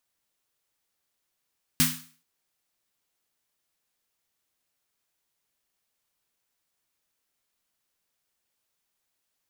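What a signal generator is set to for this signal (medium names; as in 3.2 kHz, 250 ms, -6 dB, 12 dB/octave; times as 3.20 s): snare drum length 0.43 s, tones 160 Hz, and 250 Hz, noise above 1.1 kHz, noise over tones 4.5 dB, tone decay 0.40 s, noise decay 0.43 s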